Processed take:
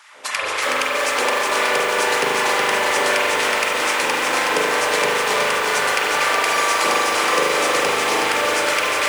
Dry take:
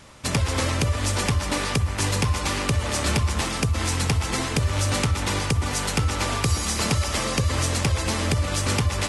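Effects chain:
high-pass filter 130 Hz 6 dB per octave
hum removal 329.1 Hz, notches 32
auto-filter high-pass sine 3.9 Hz 400–2,000 Hz
spring reverb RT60 1.8 s, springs 39 ms, chirp 65 ms, DRR −4.5 dB
feedback echo at a low word length 370 ms, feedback 80%, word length 6 bits, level −3.5 dB

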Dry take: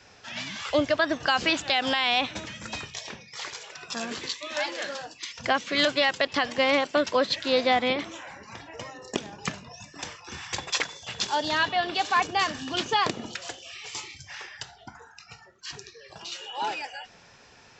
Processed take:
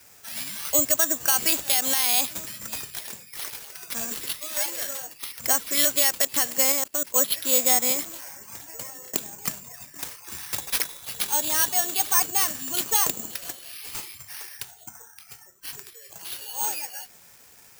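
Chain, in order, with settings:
bad sample-rate conversion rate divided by 6×, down none, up zero stuff
0:06.72–0:07.16: output level in coarse steps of 19 dB
level −5.5 dB

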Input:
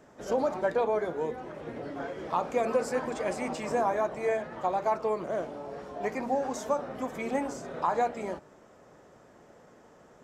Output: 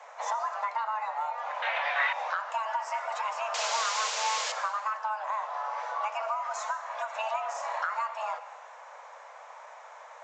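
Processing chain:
downward compressor 6 to 1, threshold −37 dBFS, peak gain reduction 14.5 dB
0:03.54–0:04.52: bit-depth reduction 6 bits, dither triangular
convolution reverb RT60 1.2 s, pre-delay 63 ms, DRR 12 dB
frequency shifter +430 Hz
0:06.65–0:07.19: low-shelf EQ 370 Hz −11.5 dB
downsampling to 16,000 Hz
0:01.62–0:02.13: flat-topped bell 2,400 Hz +14.5 dB
level +7.5 dB

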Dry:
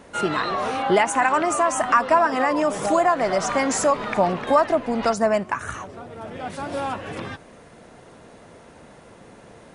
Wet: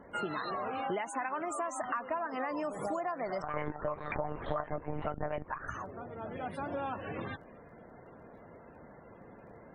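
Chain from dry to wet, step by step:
downward compressor 5 to 1, threshold −27 dBFS, peak gain reduction 13.5 dB
spectral peaks only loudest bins 64
surface crackle 16 per second −58 dBFS
0:03.42–0:05.68: one-pitch LPC vocoder at 8 kHz 150 Hz
level −6 dB

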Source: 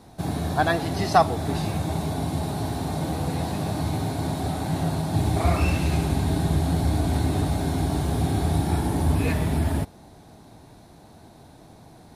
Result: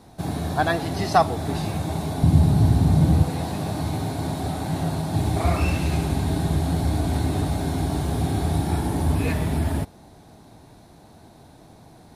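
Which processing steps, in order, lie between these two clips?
0:02.23–0:03.23: bass and treble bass +14 dB, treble 0 dB

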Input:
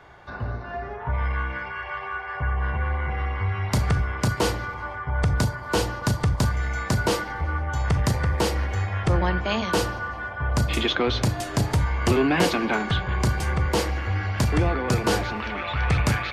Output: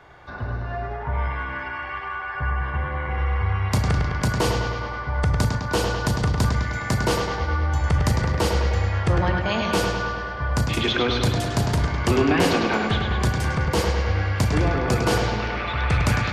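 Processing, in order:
bucket-brigade delay 103 ms, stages 4,096, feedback 66%, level −5 dB

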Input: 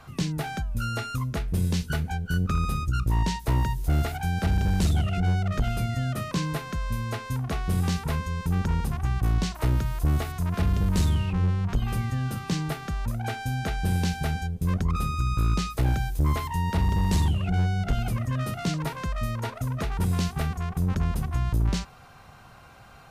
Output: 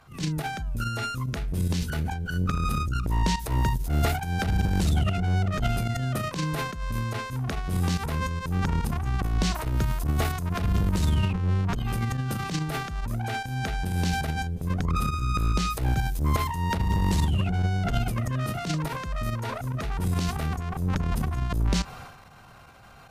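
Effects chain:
fake sidechain pumping 143 BPM, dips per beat 1, −15 dB, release 98 ms
transient designer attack −10 dB, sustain +9 dB

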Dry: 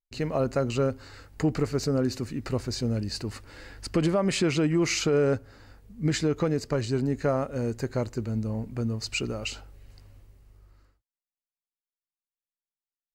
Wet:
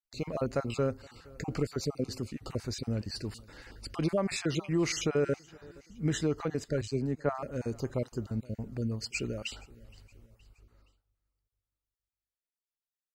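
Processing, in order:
time-frequency cells dropped at random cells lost 29%
repeating echo 470 ms, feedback 48%, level −24 dB
0:06.81–0:07.35: multiband upward and downward expander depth 100%
level −4 dB

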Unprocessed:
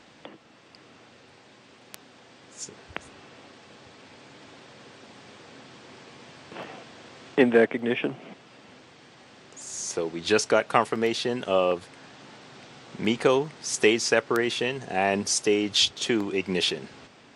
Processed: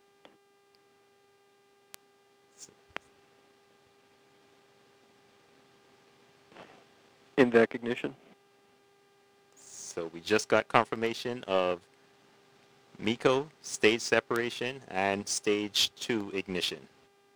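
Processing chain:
power curve on the samples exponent 1.4
hum with harmonics 400 Hz, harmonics 40, −66 dBFS −6 dB per octave

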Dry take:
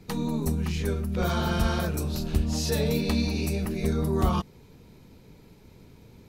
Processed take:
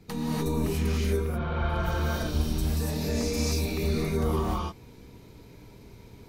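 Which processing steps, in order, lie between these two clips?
brickwall limiter −21 dBFS, peak gain reduction 8.5 dB
0:01.08–0:03.78: three-band delay without the direct sound lows, mids, highs 110/610 ms, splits 370/3,100 Hz
reverb whose tail is shaped and stops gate 320 ms rising, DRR −6 dB
level −3.5 dB

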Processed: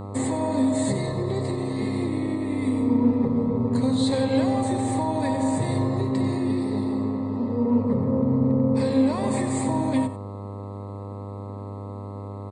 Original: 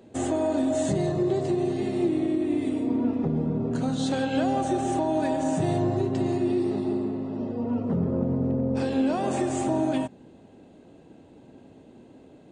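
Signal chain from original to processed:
EQ curve with evenly spaced ripples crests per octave 0.97, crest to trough 14 dB
hum with harmonics 100 Hz, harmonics 13, −35 dBFS −5 dB per octave
single-tap delay 92 ms −13 dB

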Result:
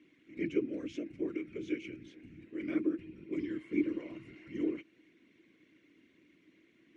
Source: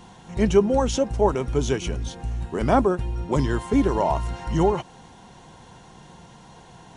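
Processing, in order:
random phases in short frames
pair of resonant band-passes 840 Hz, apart 2.8 octaves
level −4.5 dB

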